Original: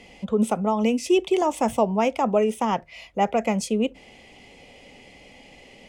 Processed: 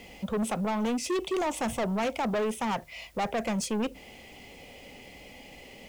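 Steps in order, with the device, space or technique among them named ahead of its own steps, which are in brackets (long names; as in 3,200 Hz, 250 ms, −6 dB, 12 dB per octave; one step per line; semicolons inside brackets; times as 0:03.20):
open-reel tape (soft clipping −25.5 dBFS, distortion −7 dB; parametric band 61 Hz +3 dB; white noise bed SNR 32 dB)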